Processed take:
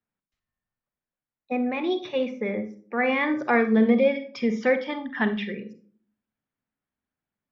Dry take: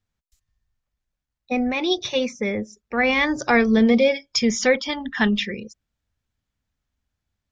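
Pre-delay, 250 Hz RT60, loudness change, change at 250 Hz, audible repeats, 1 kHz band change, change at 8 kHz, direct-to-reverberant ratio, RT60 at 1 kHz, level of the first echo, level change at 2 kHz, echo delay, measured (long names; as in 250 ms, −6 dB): 37 ms, 0.75 s, −4.0 dB, −3.0 dB, no echo audible, −2.5 dB, can't be measured, 9.5 dB, 0.40 s, no echo audible, −5.0 dB, no echo audible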